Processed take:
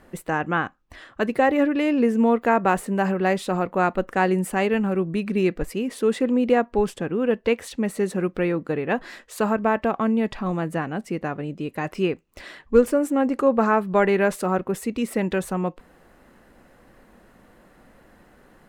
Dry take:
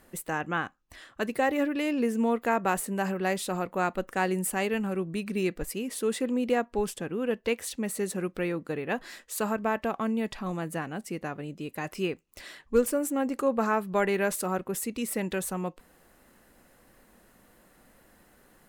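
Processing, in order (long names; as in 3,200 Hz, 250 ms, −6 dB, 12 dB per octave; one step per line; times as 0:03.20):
low-pass filter 2,200 Hz 6 dB per octave
level +7.5 dB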